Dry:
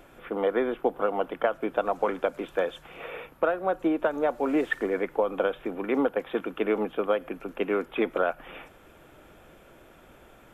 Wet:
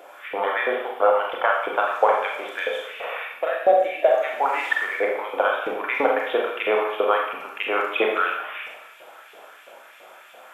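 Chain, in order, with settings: LFO high-pass saw up 3 Hz 510–3200 Hz; time-frequency box 3.38–4.11 s, 780–1600 Hz -15 dB; Schroeder reverb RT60 0.76 s, combs from 29 ms, DRR -1 dB; trim +4 dB

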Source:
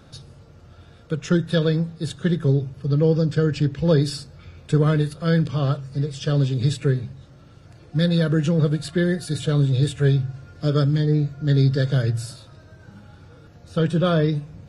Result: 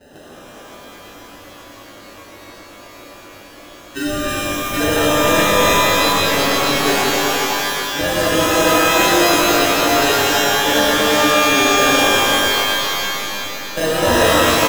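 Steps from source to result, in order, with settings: local Wiener filter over 9 samples; vibrato 0.41 Hz 17 cents; high-pass 310 Hz 24 dB/octave; in parallel at +2 dB: compression, threshold -36 dBFS, peak gain reduction 19 dB; on the sum: sample-and-hold 39×; spectral selection erased 2.06–4.80 s, 400–1300 Hz; on a send: delay 366 ms -8.5 dB; on the sum: spectral freeze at 0.89 s, 3.06 s; pitch-shifted reverb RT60 3.3 s, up +12 st, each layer -2 dB, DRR -9 dB; trim -2 dB

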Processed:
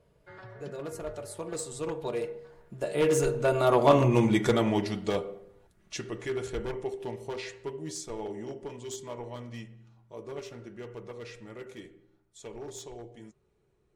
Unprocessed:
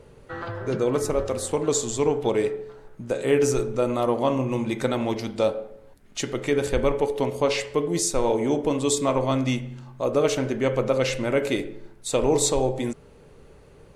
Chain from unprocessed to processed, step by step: one-sided wavefolder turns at -15.5 dBFS; Doppler pass-by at 4.05 s, 32 m/s, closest 15 m; comb of notches 260 Hz; trim +5 dB

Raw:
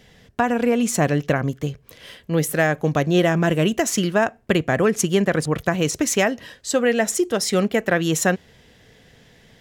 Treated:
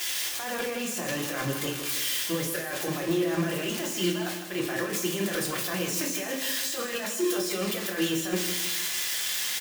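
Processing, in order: zero-crossing glitches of -16 dBFS; 4.11–6.42 s: expander -17 dBFS; high-pass 1.3 kHz 6 dB/octave; treble shelf 4 kHz -8 dB; compressor with a negative ratio -34 dBFS, ratio -1; hard clipper -25 dBFS, distortion -10 dB; feedback delay 157 ms, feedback 47%, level -9.5 dB; reverberation RT60 0.45 s, pre-delay 3 ms, DRR -2.5 dB

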